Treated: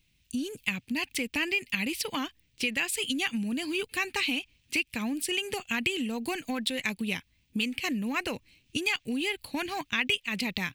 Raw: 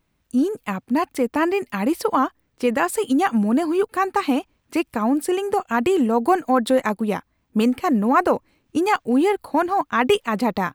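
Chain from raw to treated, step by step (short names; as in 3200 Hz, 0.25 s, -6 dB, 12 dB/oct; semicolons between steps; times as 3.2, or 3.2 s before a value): EQ curve 120 Hz 0 dB, 640 Hz -15 dB, 1300 Hz -16 dB, 2600 Hz +9 dB, 13000 Hz +2 dB; compressor 5:1, threshold -29 dBFS, peak gain reduction 14.5 dB; dynamic EQ 2100 Hz, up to +5 dB, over -44 dBFS, Q 0.89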